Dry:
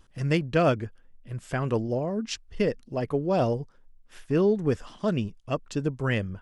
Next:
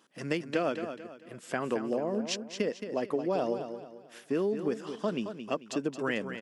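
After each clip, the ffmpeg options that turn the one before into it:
ffmpeg -i in.wav -filter_complex "[0:a]highpass=frequency=210:width=0.5412,highpass=frequency=210:width=1.3066,acompressor=threshold=-26dB:ratio=6,asplit=2[link_01][link_02];[link_02]aecho=0:1:221|442|663|884:0.355|0.128|0.046|0.0166[link_03];[link_01][link_03]amix=inputs=2:normalize=0" out.wav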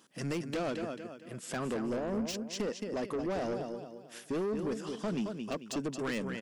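ffmpeg -i in.wav -af "asoftclip=type=tanh:threshold=-30.5dB,deesser=0.95,bass=frequency=250:gain=6,treble=frequency=4000:gain=6" out.wav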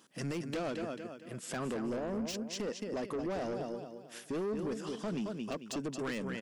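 ffmpeg -i in.wav -af "alimiter=level_in=5.5dB:limit=-24dB:level=0:latency=1:release=118,volume=-5.5dB" out.wav

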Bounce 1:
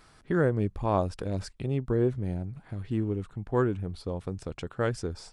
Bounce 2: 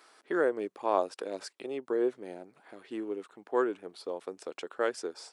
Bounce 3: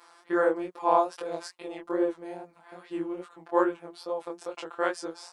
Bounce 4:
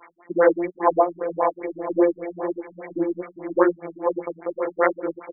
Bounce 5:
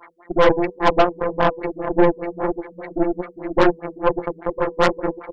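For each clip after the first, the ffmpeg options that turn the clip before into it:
ffmpeg -i in.wav -af "highpass=frequency=340:width=0.5412,highpass=frequency=340:width=1.3066" out.wav
ffmpeg -i in.wav -af "equalizer=frequency=950:width_type=o:width=0.91:gain=7.5,afftfilt=real='hypot(re,im)*cos(PI*b)':imag='0':win_size=1024:overlap=0.75,flanger=delay=19:depth=7.4:speed=2.4,volume=7.5dB" out.wav
ffmpeg -i in.wav -af "aexciter=amount=9:drive=6:freq=2300,aecho=1:1:501|1002|1503|2004|2505:0.398|0.183|0.0842|0.0388|0.0178,afftfilt=real='re*lt(b*sr/1024,240*pow(2400/240,0.5+0.5*sin(2*PI*5*pts/sr)))':imag='im*lt(b*sr/1024,240*pow(2400/240,0.5+0.5*sin(2*PI*5*pts/sr)))':win_size=1024:overlap=0.75,volume=8.5dB" out.wav
ffmpeg -i in.wav -af "bandreject=frequency=98.93:width_type=h:width=4,bandreject=frequency=197.86:width_type=h:width=4,bandreject=frequency=296.79:width_type=h:width=4,bandreject=frequency=395.72:width_type=h:width=4,bandreject=frequency=494.65:width_type=h:width=4,acontrast=57,aeval=exprs='1*(cos(1*acos(clip(val(0)/1,-1,1)))-cos(1*PI/2))+0.178*(cos(6*acos(clip(val(0)/1,-1,1)))-cos(6*PI/2))':channel_layout=same,volume=-3dB" out.wav

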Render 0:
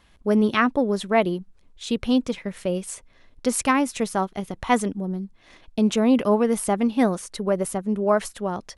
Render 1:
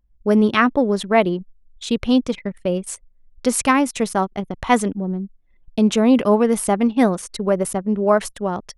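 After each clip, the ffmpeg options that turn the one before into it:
ffmpeg -i in.wav -af "anlmdn=1,volume=4dB" out.wav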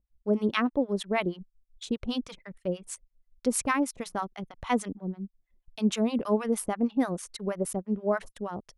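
ffmpeg -i in.wav -filter_complex "[0:a]acrossover=split=790[link_01][link_02];[link_01]aeval=exprs='val(0)*(1-1/2+1/2*cos(2*PI*6.3*n/s))':channel_layout=same[link_03];[link_02]aeval=exprs='val(0)*(1-1/2-1/2*cos(2*PI*6.3*n/s))':channel_layout=same[link_04];[link_03][link_04]amix=inputs=2:normalize=0,volume=-6.5dB" out.wav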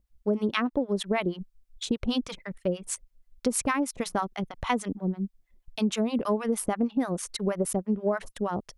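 ffmpeg -i in.wav -af "acompressor=threshold=-29dB:ratio=6,volume=6.5dB" out.wav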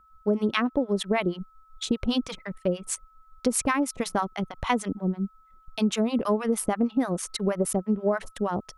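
ffmpeg -i in.wav -af "aeval=exprs='val(0)+0.00126*sin(2*PI*1300*n/s)':channel_layout=same,volume=2dB" out.wav

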